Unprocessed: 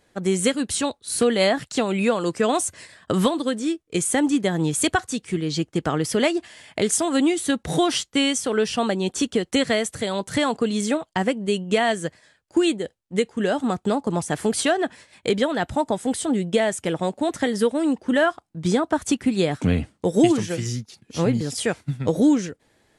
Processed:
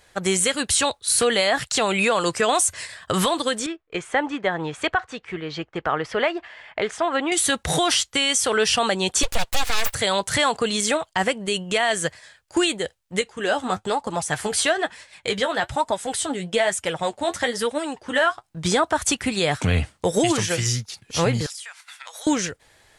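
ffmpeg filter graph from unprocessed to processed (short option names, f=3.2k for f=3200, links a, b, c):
-filter_complex "[0:a]asettb=1/sr,asplit=3[a][b][c];[a]atrim=end=3.664[d];[b]atrim=start=3.66:end=7.32,asetpts=PTS-STARTPTS,afade=t=in:d=0.004:c=qsin,afade=t=out:st=3.656:d=0.004:c=qsin,lowpass=1.8k,equalizer=f=94:w=0.4:g=-11[e];[c]atrim=start=7.316[f];[d][e]acrossfade=d=0.004:c1=hsin:c2=qsin[g];[g][f]acrossfade=d=0.004:c1=qsin:c2=hsin,asettb=1/sr,asplit=3[h][i][j];[h]atrim=end=9.234[k];[i]atrim=start=9.23:end=9.94,asetpts=PTS-STARTPTS,afade=t=in:d=0.004:c=qsin,afade=t=out:st=0.706:d=0.004:c=qsin,highpass=f=92:w=0.5412,highpass=f=92:w=1.3066,aecho=1:1:3.6:0.69,atrim=end_sample=31311,aeval=exprs='abs(val(0))':c=same[l];[j]atrim=start=9.936[m];[k][l]acrossfade=d=0.004:c1=hsin:c2=qsin[n];[n][m]acrossfade=d=0.004:c1=qsin:c2=hsin,asettb=1/sr,asplit=3[o][p][q];[o]atrim=end=13.214[r];[p]atrim=start=13.21:end=18.44,asetpts=PTS-STARTPTS,afade=t=in:d=0.004:c=qsin,afade=t=out:st=5.226:d=0.004:c=qsin,highshelf=f=11k:g=-5,flanger=delay=3:depth=9.2:regen=41:speed=1.1:shape=triangular[s];[q]atrim=start=18.436[t];[r][s]acrossfade=d=0.004:c1=hsin:c2=qsin[u];[u][t]acrossfade=d=0.004:c1=qsin:c2=hsin,asettb=1/sr,asplit=3[v][w][x];[v]atrim=end=21.464[y];[w]atrim=start=21.46:end=22.27,asetpts=PTS-STARTPTS,afade=t=in:d=0.004:c=qsin,afade=t=out:st=0.806:d=0.004:c=qsin,highpass=f=1k:w=0.5412,highpass=f=1k:w=1.3066,acompressor=threshold=-42dB:ratio=16:attack=3.2:release=140:knee=1:detection=peak[z];[x]atrim=start=22.266[aa];[y][z]acrossfade=d=0.004:c1=hsin:c2=qsin[ab];[ab][aa]acrossfade=d=0.004:c1=qsin:c2=hsin,equalizer=f=250:t=o:w=1.9:g=-14.5,alimiter=level_in=18.5dB:limit=-1dB:release=50:level=0:latency=1,volume=-9dB"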